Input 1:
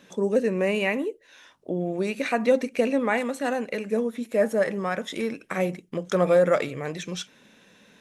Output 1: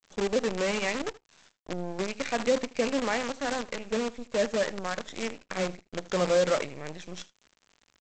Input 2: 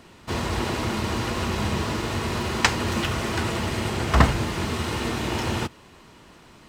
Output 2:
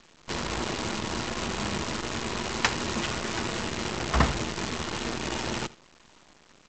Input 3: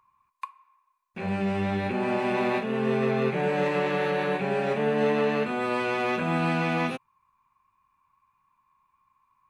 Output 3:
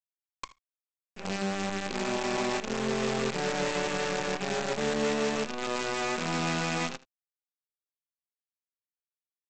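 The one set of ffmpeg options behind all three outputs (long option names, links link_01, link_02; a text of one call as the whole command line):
ffmpeg -i in.wav -af "aresample=16000,acrusher=bits=5:dc=4:mix=0:aa=0.000001,aresample=44100,equalizer=frequency=93:width=3.1:gain=-10.5,aecho=1:1:78:0.1,volume=-5dB" out.wav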